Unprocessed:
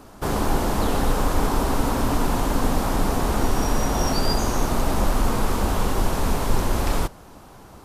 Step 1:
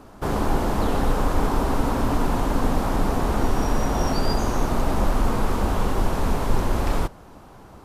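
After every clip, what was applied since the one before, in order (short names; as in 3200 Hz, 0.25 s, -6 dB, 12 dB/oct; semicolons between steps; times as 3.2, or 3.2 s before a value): high shelf 3500 Hz -7.5 dB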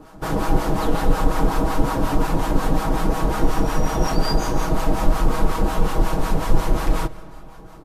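comb 6.3 ms; harmonic tremolo 5.5 Hz, depth 70%, crossover 720 Hz; reverb RT60 2.8 s, pre-delay 75 ms, DRR 18.5 dB; gain +3.5 dB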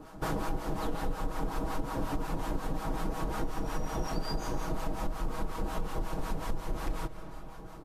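compressor 6:1, threshold -24 dBFS, peak gain reduction 15.5 dB; gain -4.5 dB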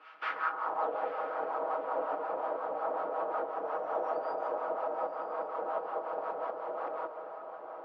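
speaker cabinet 470–4200 Hz, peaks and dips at 510 Hz +4 dB, 1300 Hz +9 dB, 3800 Hz -5 dB; band-pass sweep 2500 Hz -> 630 Hz, 0.23–0.89; diffused feedback echo 0.91 s, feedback 44%, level -11 dB; gain +8.5 dB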